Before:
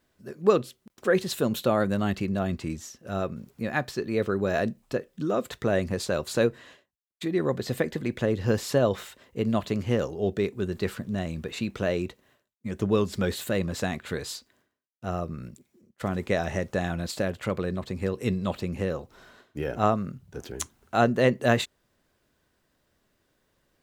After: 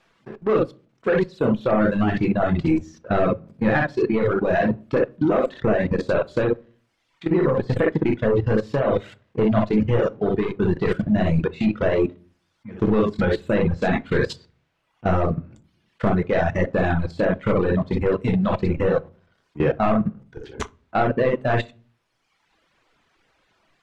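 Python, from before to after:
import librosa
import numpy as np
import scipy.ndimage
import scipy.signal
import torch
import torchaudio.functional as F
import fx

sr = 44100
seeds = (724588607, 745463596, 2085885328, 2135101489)

y = fx.room_early_taps(x, sr, ms=(23, 60), db=(-6.5, -3.5))
y = fx.rider(y, sr, range_db=5, speed_s=0.5)
y = fx.leveller(y, sr, passes=3)
y = fx.dmg_noise_colour(y, sr, seeds[0], colour='white', level_db=-53.0)
y = fx.level_steps(y, sr, step_db=18)
y = scipy.signal.sosfilt(scipy.signal.butter(2, 2400.0, 'lowpass', fs=sr, output='sos'), y)
y = fx.room_shoebox(y, sr, seeds[1], volume_m3=250.0, walls='furnished', distance_m=0.67)
y = fx.dereverb_blind(y, sr, rt60_s=1.1)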